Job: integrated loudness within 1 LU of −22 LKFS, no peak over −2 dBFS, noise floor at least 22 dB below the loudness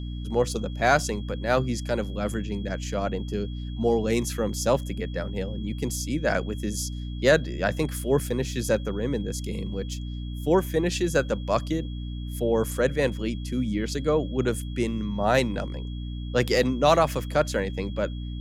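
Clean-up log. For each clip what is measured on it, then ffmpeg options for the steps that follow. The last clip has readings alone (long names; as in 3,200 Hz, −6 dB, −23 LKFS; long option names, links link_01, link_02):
mains hum 60 Hz; hum harmonics up to 300 Hz; level of the hum −30 dBFS; interfering tone 3,300 Hz; level of the tone −48 dBFS; integrated loudness −26.5 LKFS; sample peak −5.5 dBFS; target loudness −22.0 LKFS
→ -af "bandreject=frequency=60:width_type=h:width=4,bandreject=frequency=120:width_type=h:width=4,bandreject=frequency=180:width_type=h:width=4,bandreject=frequency=240:width_type=h:width=4,bandreject=frequency=300:width_type=h:width=4"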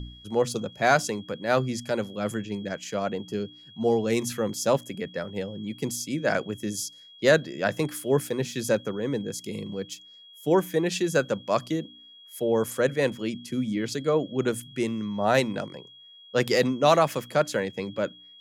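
mains hum none found; interfering tone 3,300 Hz; level of the tone −48 dBFS
→ -af "bandreject=frequency=3300:width=30"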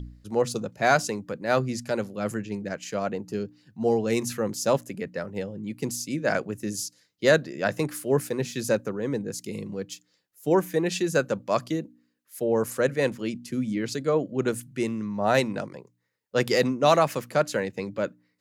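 interfering tone none found; integrated loudness −27.0 LKFS; sample peak −6.0 dBFS; target loudness −22.0 LKFS
→ -af "volume=5dB,alimiter=limit=-2dB:level=0:latency=1"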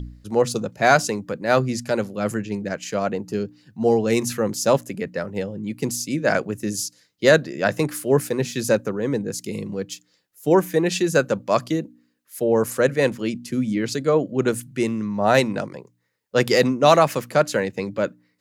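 integrated loudness −22.0 LKFS; sample peak −2.0 dBFS; background noise floor −67 dBFS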